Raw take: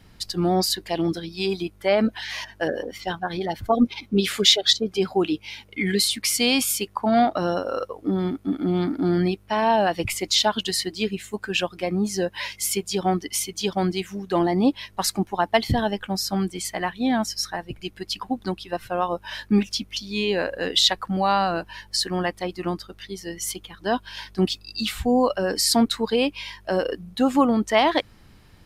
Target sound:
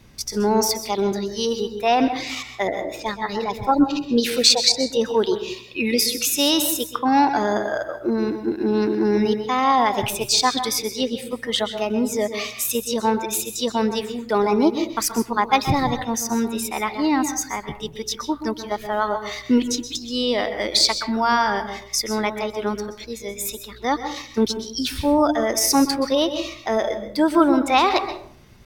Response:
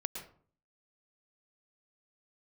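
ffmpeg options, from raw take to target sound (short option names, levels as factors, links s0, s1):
-filter_complex "[0:a]asetrate=52444,aresample=44100,atempo=0.840896,asplit=2[s0][s1];[1:a]atrim=start_sample=2205,asetrate=37926,aresample=44100[s2];[s1][s2]afir=irnorm=-1:irlink=0,volume=1.19[s3];[s0][s3]amix=inputs=2:normalize=0,volume=0.562"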